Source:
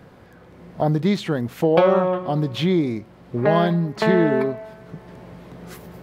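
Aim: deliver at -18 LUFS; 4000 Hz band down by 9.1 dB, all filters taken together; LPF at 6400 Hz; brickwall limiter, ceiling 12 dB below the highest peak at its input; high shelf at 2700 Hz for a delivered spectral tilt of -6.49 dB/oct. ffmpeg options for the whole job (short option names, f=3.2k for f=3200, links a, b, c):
-af "lowpass=6.4k,highshelf=f=2.7k:g=-5,equalizer=f=4k:t=o:g=-7.5,volume=7dB,alimiter=limit=-8dB:level=0:latency=1"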